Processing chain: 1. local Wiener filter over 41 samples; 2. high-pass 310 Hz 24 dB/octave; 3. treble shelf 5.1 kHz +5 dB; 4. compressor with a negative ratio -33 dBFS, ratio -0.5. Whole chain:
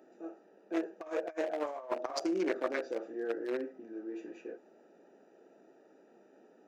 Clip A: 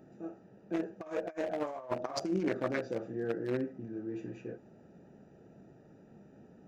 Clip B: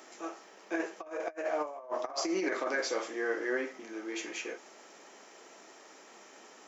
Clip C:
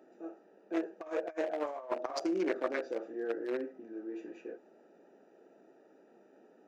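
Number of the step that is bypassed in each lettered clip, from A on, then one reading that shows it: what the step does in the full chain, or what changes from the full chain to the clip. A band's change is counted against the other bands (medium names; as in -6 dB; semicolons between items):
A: 2, 250 Hz band +2.0 dB; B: 1, 2 kHz band +6.0 dB; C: 3, 4 kHz band -2.0 dB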